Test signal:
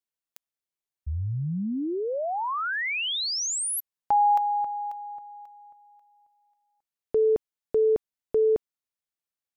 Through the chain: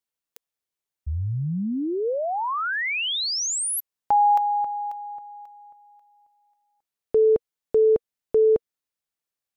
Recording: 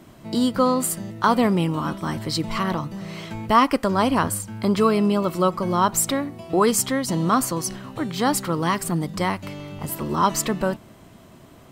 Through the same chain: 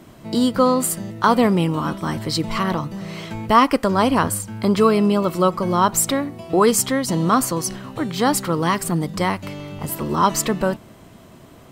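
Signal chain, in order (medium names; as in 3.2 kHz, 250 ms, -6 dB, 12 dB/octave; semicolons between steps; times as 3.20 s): peaking EQ 470 Hz +2.5 dB 0.23 oct; trim +2.5 dB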